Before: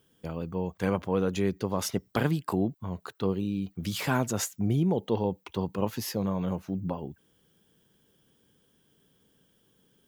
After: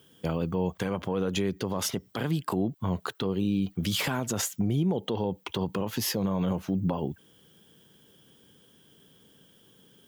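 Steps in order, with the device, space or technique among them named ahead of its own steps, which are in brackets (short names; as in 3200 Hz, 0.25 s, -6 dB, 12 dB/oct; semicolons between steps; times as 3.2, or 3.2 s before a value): broadcast voice chain (HPF 77 Hz 12 dB/oct; de-esser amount 50%; compressor, threshold -29 dBFS, peak gain reduction 8.5 dB; bell 3200 Hz +5 dB 0.25 oct; limiter -26 dBFS, peak gain reduction 11 dB); gain +7.5 dB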